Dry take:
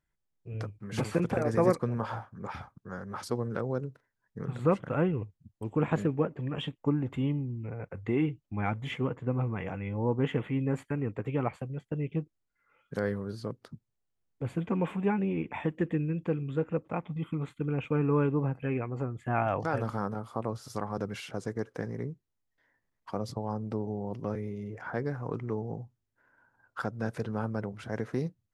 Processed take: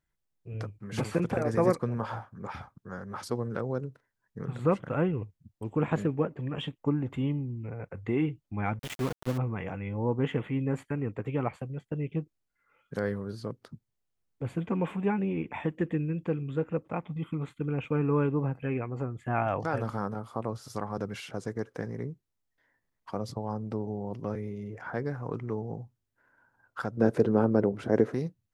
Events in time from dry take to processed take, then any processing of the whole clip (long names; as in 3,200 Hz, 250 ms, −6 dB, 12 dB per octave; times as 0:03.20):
0:08.79–0:09.38: centre clipping without the shift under −33 dBFS
0:26.97–0:28.14: parametric band 360 Hz +14.5 dB 2 octaves